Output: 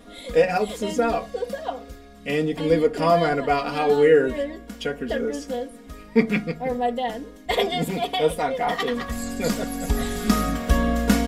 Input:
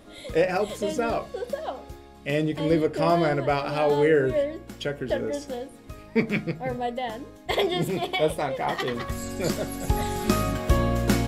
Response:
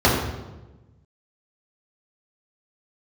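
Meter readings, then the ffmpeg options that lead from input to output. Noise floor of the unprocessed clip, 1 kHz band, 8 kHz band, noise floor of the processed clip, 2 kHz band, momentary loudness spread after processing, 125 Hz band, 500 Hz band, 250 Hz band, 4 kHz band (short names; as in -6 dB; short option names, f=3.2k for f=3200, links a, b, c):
-47 dBFS, +3.5 dB, +2.5 dB, -44 dBFS, +2.5 dB, 12 LU, -1.0 dB, +3.0 dB, +3.0 dB, +2.5 dB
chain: -af "aecho=1:1:4.2:0.92"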